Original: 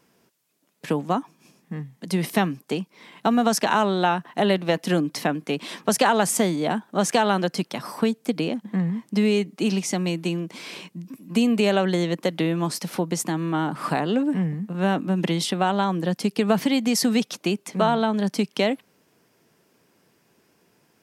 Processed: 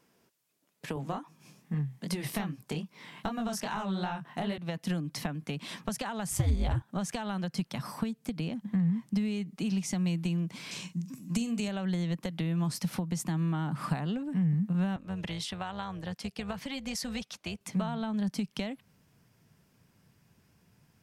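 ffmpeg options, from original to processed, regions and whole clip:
-filter_complex "[0:a]asettb=1/sr,asplit=3[a][b][c];[a]atrim=end=0.954[d];[b]atrim=start=0.95:end=4.58,asetpts=PTS-STARTPTS,afade=t=in:d=0.004:c=qsin,afade=t=out:st=3.626:d=0.004:c=qsin,highpass=59,flanger=delay=18.5:depth=7.3:speed=2.5,acontrast=82[e];[c]atrim=start=4.576[f];[d][e]acrossfade=d=0.004:c1=hsin:c2=qsin[g];[g][f]acrossfade=d=0.004:c1=qsin:c2=hsin,asettb=1/sr,asplit=3[h][i][j];[h]atrim=end=6.314[k];[i]atrim=start=6.31:end=6.82,asetpts=PTS-STARTPTS,afade=t=in:d=0.004:c=qsin,afade=t=out:st=0.506:d=0.004:c=qsin,asplit=2[l][m];[m]adelay=12,volume=-8dB[n];[l][n]amix=inputs=2:normalize=0,atrim=end_sample=22491,acontrast=83,aeval=exprs='val(0)*sin(2*PI*99*n/s)':c=same[o];[j]atrim=start=6.816[p];[k][o]acrossfade=d=0.004:c1=hsin:c2=qsin[q];[q][p]acrossfade=d=0.004:c1=qsin:c2=hsin,asettb=1/sr,asplit=3[r][s][t];[r]atrim=end=10.714[u];[s]atrim=start=10.71:end=11.68,asetpts=PTS-STARTPTS,afade=t=in:d=0.004:c=qsin,afade=t=out:st=0.966:d=0.004:c=qsin,equalizer=f=6.8k:t=o:w=0.99:g=12.5,asplit=2[v][w];[w]adelay=43,volume=-11dB[x];[v][x]amix=inputs=2:normalize=0,atrim=end_sample=42777[y];[t]atrim=start=11.676[z];[u][y]acrossfade=d=0.004:c1=hsin:c2=qsin[aa];[aa][z]acrossfade=d=0.004:c1=qsin:c2=hsin,asettb=1/sr,asplit=3[ab][ac][ad];[ab]atrim=end=14.964[ae];[ac]atrim=start=14.96:end=17.61,asetpts=PTS-STARTPTS,afade=t=in:d=0.004:c=qsin,afade=t=out:st=2.646:d=0.004:c=qsin,highshelf=f=10k:g=-10,tremolo=f=280:d=0.519,highpass=f=670:p=1[af];[ad]atrim=start=17.606[ag];[ae][af]acrossfade=d=0.004:c1=hsin:c2=qsin[ah];[ah][ag]acrossfade=d=0.004:c1=qsin:c2=hsin,acompressor=threshold=-26dB:ratio=6,asubboost=boost=11:cutoff=110,volume=-5.5dB"

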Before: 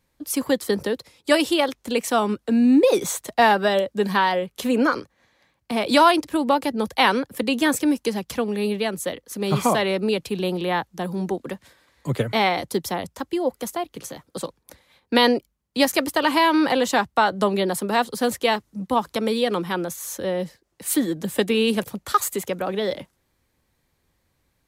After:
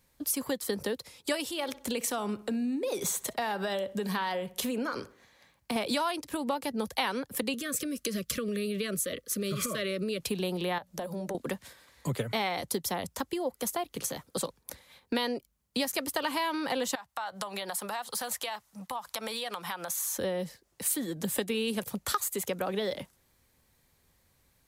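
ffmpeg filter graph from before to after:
-filter_complex "[0:a]asettb=1/sr,asplit=3[a][b][c];[a]atrim=end=1.474[d];[b]atrim=start=1.47:end=5.76,asetpts=PTS-STARTPTS,afade=t=in:d=0.004:c=qsin,afade=t=out:st=4.286:d=0.004:c=qsin,acompressor=threshold=-29dB:ratio=2.5:attack=3.2:release=140:knee=1:detection=peak,asplit=2[e][f];[f]adelay=62,lowpass=f=3k:p=1,volume=-18dB,asplit=2[g][h];[h]adelay=62,lowpass=f=3k:p=1,volume=0.45,asplit=2[i][j];[j]adelay=62,lowpass=f=3k:p=1,volume=0.45,asplit=2[k][l];[l]adelay=62,lowpass=f=3k:p=1,volume=0.45[m];[e][g][i][k][m]amix=inputs=5:normalize=0,atrim=end_sample=189189[n];[c]atrim=start=5.756[o];[d][n]acrossfade=d=0.004:c1=hsin:c2=qsin[p];[p][o]acrossfade=d=0.004:c1=qsin:c2=hsin,asettb=1/sr,asplit=3[q][r][s];[q]atrim=end=7.544[t];[r]atrim=start=7.54:end=10.21,asetpts=PTS-STARTPTS,afade=t=in:d=0.004:c=qsin,afade=t=out:st=2.666:d=0.004:c=qsin,acompressor=threshold=-25dB:ratio=12:attack=3.2:release=140:knee=1:detection=peak,asuperstop=centerf=840:order=20:qfactor=1.9[u];[s]atrim=start=10.206[v];[t][u]acrossfade=d=0.004:c1=hsin:c2=qsin[w];[w][v]acrossfade=d=0.004:c1=qsin:c2=hsin,asettb=1/sr,asplit=3[x][y][z];[x]atrim=end=10.784[aa];[y]atrim=start=10.78:end=11.35,asetpts=PTS-STARTPTS,afade=t=in:d=0.004:c=qsin,afade=t=out:st=0.566:d=0.004:c=qsin,equalizer=f=590:w=4.9:g=15,acompressor=threshold=-33dB:ratio=4:attack=3.2:release=140:knee=1:detection=peak,bandreject=f=60:t=h:w=6,bandreject=f=120:t=h:w=6,bandreject=f=180:t=h:w=6,bandreject=f=240:t=h:w=6[ab];[z]atrim=start=11.346[ac];[aa][ab]acrossfade=d=0.004:c1=hsin:c2=qsin[ad];[ad][ac]acrossfade=d=0.004:c1=qsin:c2=hsin,asettb=1/sr,asplit=3[ae][af][ag];[ae]atrim=end=16.954[ah];[af]atrim=start=16.95:end=20.18,asetpts=PTS-STARTPTS,afade=t=in:d=0.004:c=qsin,afade=t=out:st=3.226:d=0.004:c=qsin,lowshelf=f=530:t=q:w=1.5:g=-12,acompressor=threshold=-32dB:ratio=12:attack=3.2:release=140:knee=1:detection=peak[ai];[ag]atrim=start=20.176[aj];[ah][ai]acrossfade=d=0.004:c1=hsin:c2=qsin[ak];[ak][aj]acrossfade=d=0.004:c1=qsin:c2=hsin,highshelf=f=5.5k:g=7,acompressor=threshold=-28dB:ratio=6,equalizer=f=320:t=o:w=0.27:g=-4.5"

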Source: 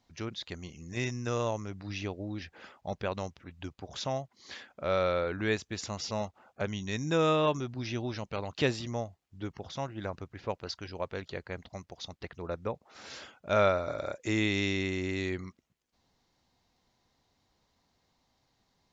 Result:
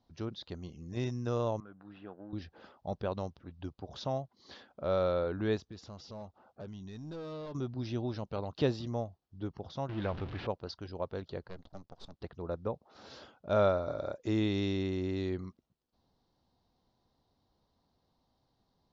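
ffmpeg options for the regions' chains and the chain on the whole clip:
-filter_complex "[0:a]asettb=1/sr,asplit=3[a][b][c];[a]atrim=end=1.604[d];[b]atrim=start=1.6:end=2.33,asetpts=PTS-STARTPTS,afade=t=in:d=0.004:c=qsin,afade=t=out:st=0.726:d=0.004:c=qsin,aeval=exprs='if(lt(val(0),0),0.447*val(0),val(0))':c=same,highpass=250,equalizer=f=270:t=q:w=4:g=-6,equalizer=f=400:t=q:w=4:g=-8,equalizer=f=600:t=q:w=4:g=-6,equalizer=f=940:t=q:w=4:g=-4,equalizer=f=1.5k:t=q:w=4:g=6,equalizer=f=2.2k:t=q:w=4:g=-9,lowpass=f=2.5k:w=0.5412,lowpass=f=2.5k:w=1.3066[e];[c]atrim=start=2.326[f];[d][e]acrossfade=d=0.004:c1=hsin:c2=qsin[g];[g][f]acrossfade=d=0.004:c1=qsin:c2=hsin,asettb=1/sr,asplit=3[h][i][j];[h]atrim=end=5.604[k];[i]atrim=start=5.6:end=7.55,asetpts=PTS-STARTPTS,afade=t=in:d=0.004:c=qsin,afade=t=out:st=1.946:d=0.004:c=qsin,volume=30dB,asoftclip=hard,volume=-30dB,acompressor=threshold=-45dB:ratio=2.5:attack=3.2:release=140:knee=1:detection=peak[l];[j]atrim=start=7.546[m];[k][l]acrossfade=d=0.004:c1=hsin:c2=qsin[n];[n][m]acrossfade=d=0.004:c1=qsin:c2=hsin,asettb=1/sr,asplit=3[o][p][q];[o]atrim=end=9.894[r];[p]atrim=start=9.89:end=10.47,asetpts=PTS-STARTPTS,afade=t=in:d=0.004:c=qsin,afade=t=out:st=0.576:d=0.004:c=qsin,aeval=exprs='val(0)+0.5*0.015*sgn(val(0))':c=same,lowpass=3.4k,equalizer=f=2.4k:t=o:w=1.3:g=11[s];[q]atrim=start=10.466[t];[r][s]acrossfade=d=0.004:c1=hsin:c2=qsin[u];[u][t]acrossfade=d=0.004:c1=qsin:c2=hsin,asettb=1/sr,asplit=3[v][w][x];[v]atrim=end=11.484[y];[w]atrim=start=11.48:end=12.14,asetpts=PTS-STARTPTS,afade=t=in:d=0.004:c=qsin,afade=t=out:st=0.656:d=0.004:c=qsin,bandreject=f=360:w=5.2,aeval=exprs='max(val(0),0)':c=same[z];[x]atrim=start=12.136[aa];[y][z]acrossfade=d=0.004:c1=hsin:c2=qsin[ab];[ab][aa]acrossfade=d=0.004:c1=qsin:c2=hsin,lowpass=f=4.7k:w=0.5412,lowpass=f=4.7k:w=1.3066,equalizer=f=2.2k:w=1.2:g=-14"

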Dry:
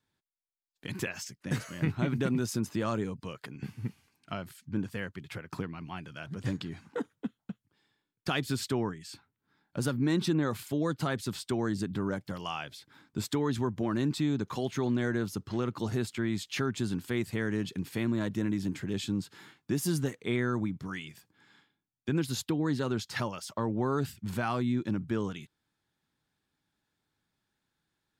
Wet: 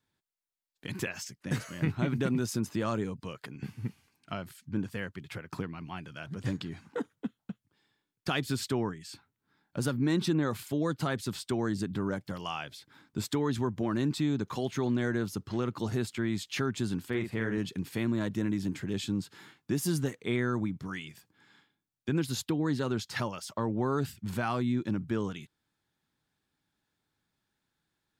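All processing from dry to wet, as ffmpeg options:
-filter_complex "[0:a]asettb=1/sr,asplit=3[a][b][c];[a]atrim=end=17.084[d];[b]atrim=start=17.08:end=17.58,asetpts=PTS-STARTPTS,afade=t=in:d=0.004:c=qsin,afade=t=out:st=0.496:d=0.004:c=qsin,bass=f=250:g=-2,treble=f=4k:g=-10,asplit=2[e][f];[f]adelay=44,volume=-6.5dB[g];[e][g]amix=inputs=2:normalize=0,atrim=end_sample=22050[h];[c]atrim=start=17.576[i];[d][h]acrossfade=d=0.004:c1=hsin:c2=qsin[j];[j][i]acrossfade=d=0.004:c1=qsin:c2=hsin"

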